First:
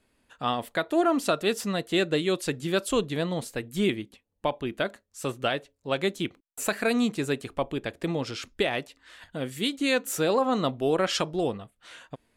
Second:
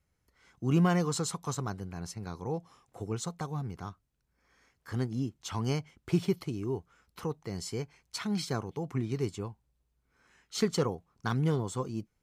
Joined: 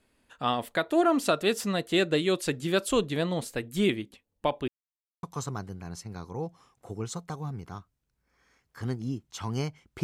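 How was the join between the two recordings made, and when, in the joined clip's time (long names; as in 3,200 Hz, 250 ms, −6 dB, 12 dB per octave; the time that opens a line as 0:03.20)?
first
0:04.68–0:05.23: silence
0:05.23: continue with second from 0:01.34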